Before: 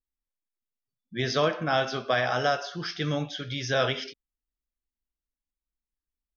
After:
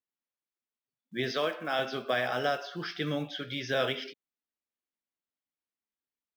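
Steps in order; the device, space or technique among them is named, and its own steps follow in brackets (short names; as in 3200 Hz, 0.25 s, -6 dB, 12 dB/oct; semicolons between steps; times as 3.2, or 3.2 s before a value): 1.31–1.79 HPF 480 Hz 6 dB/oct; early digital voice recorder (BPF 200–3600 Hz; block floating point 7-bit); dynamic EQ 1000 Hz, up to -6 dB, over -38 dBFS, Q 0.74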